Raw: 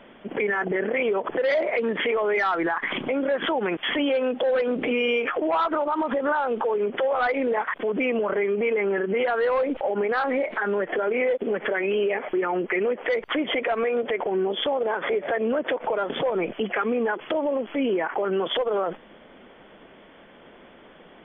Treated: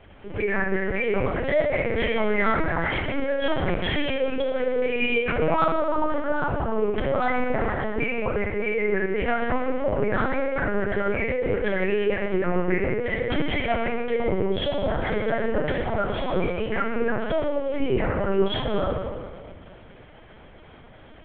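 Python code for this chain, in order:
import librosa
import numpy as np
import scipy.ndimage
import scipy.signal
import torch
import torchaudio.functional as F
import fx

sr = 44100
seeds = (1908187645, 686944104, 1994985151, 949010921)

y = fx.dynamic_eq(x, sr, hz=360.0, q=0.95, threshold_db=-35.0, ratio=4.0, max_db=-3, at=(7.65, 8.73), fade=0.02)
y = fx.room_shoebox(y, sr, seeds[0], volume_m3=2500.0, walls='mixed', distance_m=3.0)
y = fx.lpc_vocoder(y, sr, seeds[1], excitation='pitch_kept', order=8)
y = y * librosa.db_to_amplitude(-3.5)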